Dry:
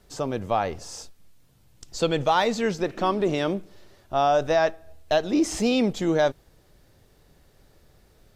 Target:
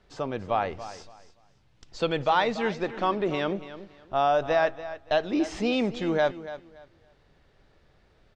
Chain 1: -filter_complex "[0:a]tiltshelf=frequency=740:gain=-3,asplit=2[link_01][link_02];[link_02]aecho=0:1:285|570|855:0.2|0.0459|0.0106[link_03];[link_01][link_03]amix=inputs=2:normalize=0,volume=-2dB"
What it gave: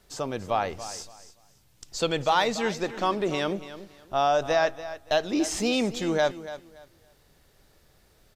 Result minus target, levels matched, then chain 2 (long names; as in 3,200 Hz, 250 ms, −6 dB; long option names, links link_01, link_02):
4,000 Hz band +4.0 dB
-filter_complex "[0:a]lowpass=3200,tiltshelf=frequency=740:gain=-3,asplit=2[link_01][link_02];[link_02]aecho=0:1:285|570|855:0.2|0.0459|0.0106[link_03];[link_01][link_03]amix=inputs=2:normalize=0,volume=-2dB"